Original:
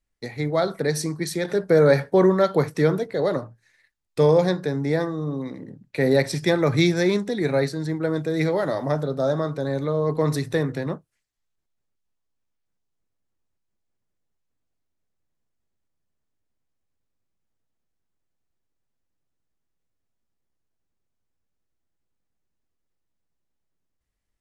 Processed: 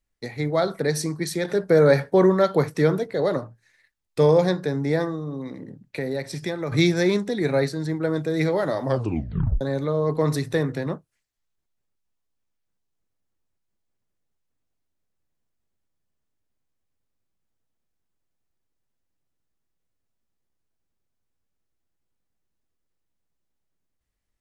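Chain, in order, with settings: 5.15–6.72 s: compression 2.5:1, threshold -29 dBFS, peak gain reduction 10.5 dB; 8.85 s: tape stop 0.76 s

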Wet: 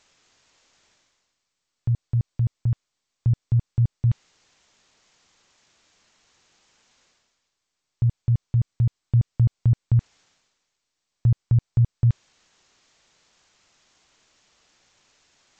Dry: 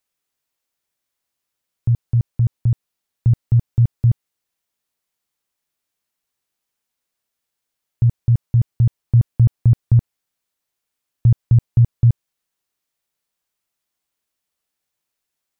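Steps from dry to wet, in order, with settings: reverse; upward compressor, threshold -32 dBFS; reverse; trim -5.5 dB; G.722 64 kbps 16 kHz

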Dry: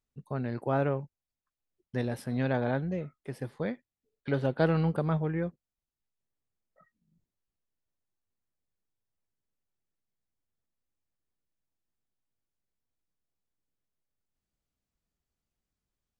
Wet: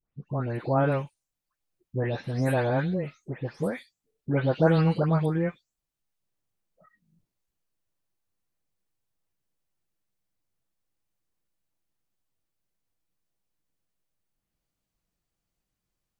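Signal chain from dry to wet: delay that grows with frequency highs late, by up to 296 ms; trim +5 dB

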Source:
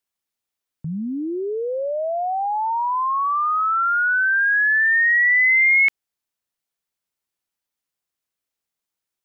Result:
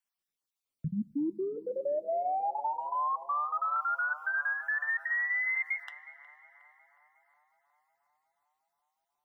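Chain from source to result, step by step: random holes in the spectrogram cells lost 34%; 3.76–5.84 s: resonant high shelf 1.6 kHz +12.5 dB, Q 3; peak limiter -22.5 dBFS, peak gain reduction 29 dB; compressor with a negative ratio -26 dBFS, ratio -0.5; flange 0.55 Hz, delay 4.7 ms, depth 3.5 ms, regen -67%; band-passed feedback delay 363 ms, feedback 76%, band-pass 800 Hz, level -15 dB; plate-style reverb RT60 3.7 s, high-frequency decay 0.9×, DRR 20 dB

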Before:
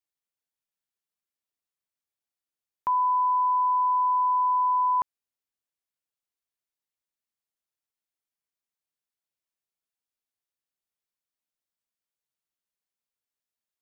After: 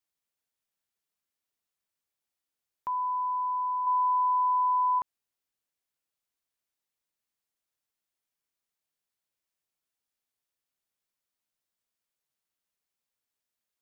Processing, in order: peak limiter -29.5 dBFS, peak gain reduction 9.5 dB; 3.82–4.99 s: doubling 48 ms -3 dB; trim +3 dB

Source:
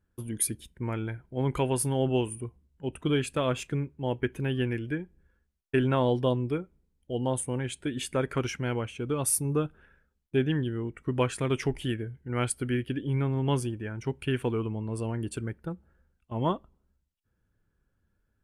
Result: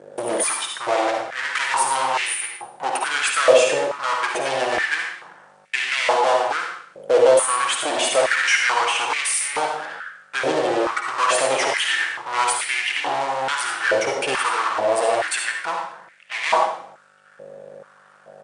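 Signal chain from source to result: hum 50 Hz, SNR 24 dB; comb 6.2 ms, depth 47%; in parallel at -3.5 dB: fuzz box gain 47 dB, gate -57 dBFS; on the sum: brick-wall FIR low-pass 10 kHz; on a send at -1 dB: reverberation RT60 0.65 s, pre-delay 48 ms; on the sum: step-sequenced high-pass 2.3 Hz 530–2100 Hz; trim -5.5 dB

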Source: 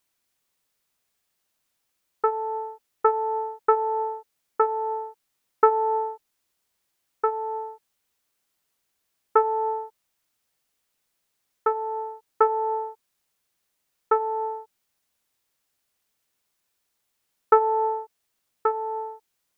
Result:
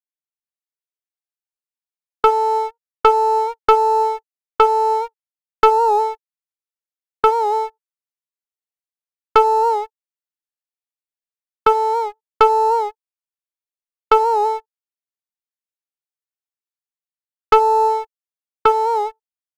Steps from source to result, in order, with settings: high-pass 390 Hz 6 dB/octave; gate -34 dBFS, range -25 dB; level rider gain up to 6 dB; waveshaping leveller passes 2; warped record 78 rpm, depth 100 cents

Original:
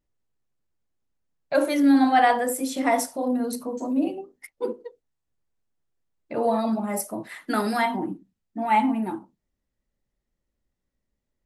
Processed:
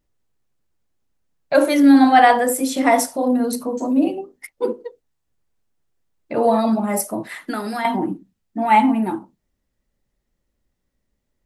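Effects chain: 7.30–7.85 s: compression 3:1, threshold -32 dBFS, peak gain reduction 10 dB; trim +6.5 dB

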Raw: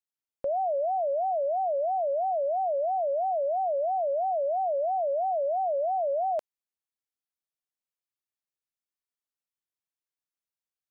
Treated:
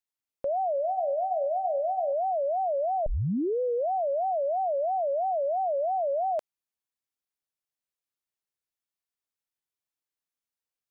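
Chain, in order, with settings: 0.73–2.13 s: de-hum 85.31 Hz, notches 17; 3.06 s: tape start 0.81 s

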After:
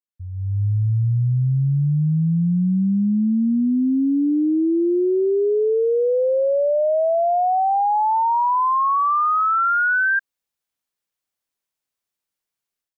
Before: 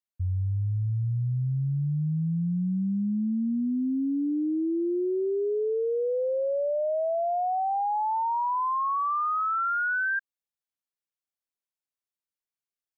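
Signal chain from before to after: level rider gain up to 16 dB; trim -7.5 dB

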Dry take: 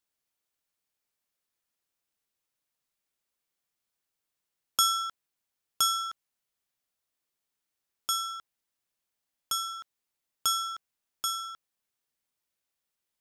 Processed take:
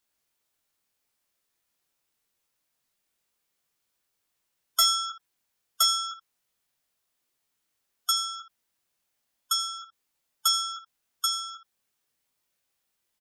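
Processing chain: early reflections 22 ms -5 dB, 79 ms -16 dB; spectral gate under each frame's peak -20 dB strong; hard clipper -19.5 dBFS, distortion -16 dB; trim +5 dB

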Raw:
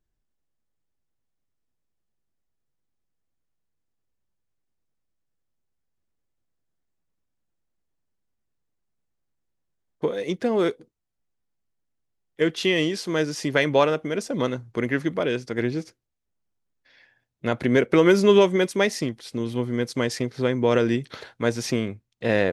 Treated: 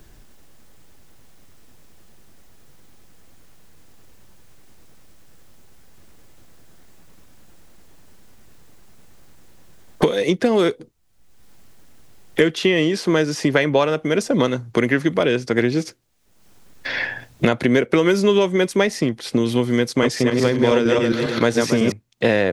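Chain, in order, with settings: 19.89–21.92 s: backward echo that repeats 137 ms, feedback 44%, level -1 dB; three bands compressed up and down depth 100%; trim +4 dB

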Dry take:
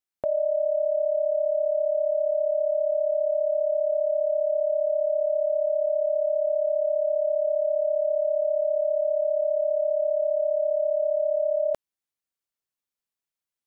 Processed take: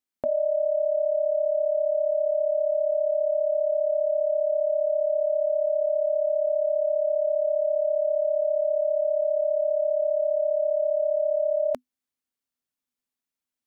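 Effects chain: peaking EQ 250 Hz +14.5 dB 0.25 oct

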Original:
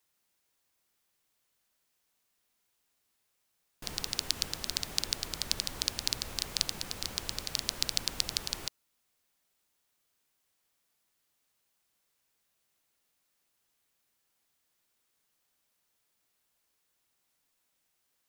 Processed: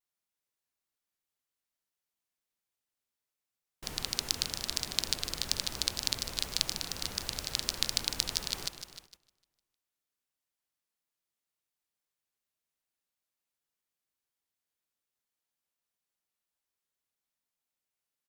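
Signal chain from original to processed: feedback delay 152 ms, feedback 58%, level -10 dB; gate -54 dBFS, range -13 dB; vibrato with a chosen wave saw down 4.2 Hz, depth 160 cents

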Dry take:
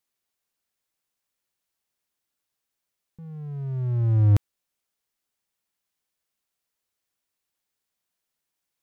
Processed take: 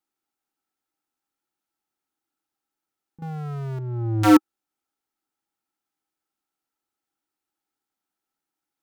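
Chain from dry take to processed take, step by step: 3.22–3.79 s: power-law waveshaper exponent 0.35; integer overflow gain 12.5 dB; small resonant body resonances 310/810/1300 Hz, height 15 dB, ringing for 30 ms; trim -6 dB

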